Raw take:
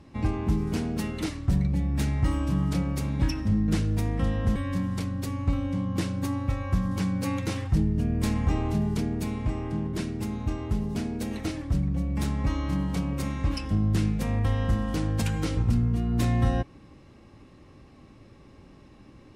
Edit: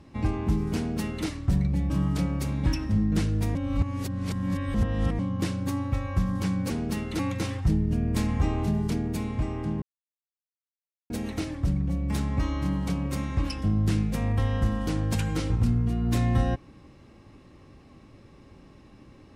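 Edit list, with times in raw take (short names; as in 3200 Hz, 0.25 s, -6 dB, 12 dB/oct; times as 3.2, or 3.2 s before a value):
0.77–1.26 copy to 7.26
1.9–2.46 cut
4.11–5.75 reverse
9.89–11.17 mute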